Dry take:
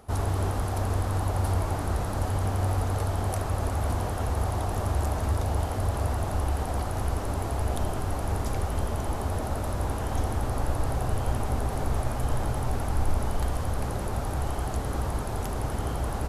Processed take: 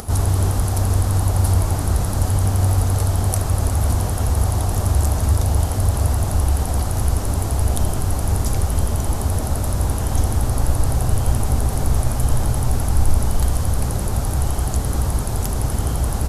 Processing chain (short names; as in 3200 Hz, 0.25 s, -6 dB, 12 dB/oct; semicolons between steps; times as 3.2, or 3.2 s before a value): tone controls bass +7 dB, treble +11 dB; upward compressor, threshold -27 dBFS; gain +3 dB